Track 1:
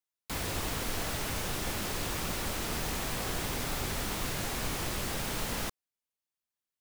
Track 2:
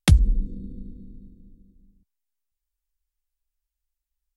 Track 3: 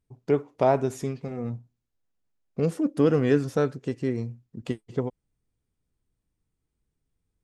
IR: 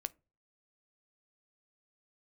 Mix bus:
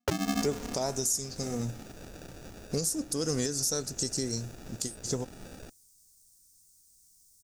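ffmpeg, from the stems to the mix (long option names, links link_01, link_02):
-filter_complex "[0:a]acrusher=samples=42:mix=1:aa=0.000001,volume=-13.5dB,asplit=2[link_01][link_02];[link_02]volume=-17dB[link_03];[1:a]lowpass=1100,aecho=1:1:6.5:0.37,aeval=exprs='val(0)*sgn(sin(2*PI*240*n/s))':channel_layout=same,volume=-4dB,asplit=2[link_04][link_05];[link_05]volume=-16dB[link_06];[2:a]highshelf=frequency=5200:gain=6,aexciter=amount=8.6:drive=8.5:freq=4300,adelay=150,volume=-3dB,asplit=2[link_07][link_08];[link_08]volume=-9.5dB[link_09];[link_04][link_07]amix=inputs=2:normalize=0,acompressor=threshold=-30dB:ratio=3,volume=0dB[link_10];[3:a]atrim=start_sample=2205[link_11];[link_03][link_06][link_09]amix=inputs=3:normalize=0[link_12];[link_12][link_11]afir=irnorm=-1:irlink=0[link_13];[link_01][link_10][link_13]amix=inputs=3:normalize=0,equalizer=frequency=5900:width_type=o:width=0.83:gain=7.5,alimiter=limit=-18dB:level=0:latency=1:release=329"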